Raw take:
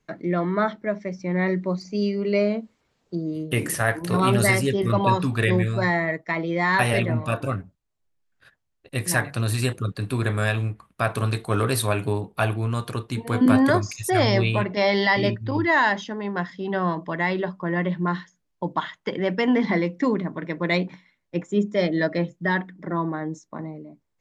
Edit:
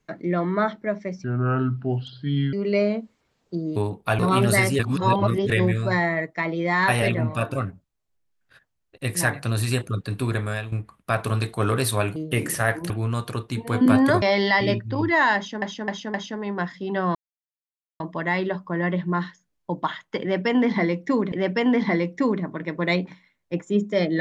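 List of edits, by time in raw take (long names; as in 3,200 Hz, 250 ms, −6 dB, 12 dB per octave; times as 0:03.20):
0:01.24–0:02.13: play speed 69%
0:03.36–0:04.10: swap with 0:12.07–0:12.50
0:04.70–0:05.41: reverse
0:10.18–0:10.63: fade out, to −12 dB
0:13.82–0:14.78: remove
0:15.92–0:16.18: repeat, 4 plays
0:16.93: splice in silence 0.85 s
0:19.14–0:20.25: repeat, 2 plays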